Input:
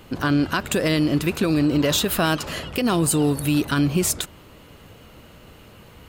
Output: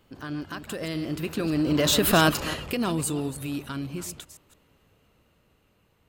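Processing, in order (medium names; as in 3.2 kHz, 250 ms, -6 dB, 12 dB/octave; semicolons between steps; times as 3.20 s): chunks repeated in reverse 162 ms, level -11 dB; Doppler pass-by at 2.18 s, 10 m/s, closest 3 m; trim +1.5 dB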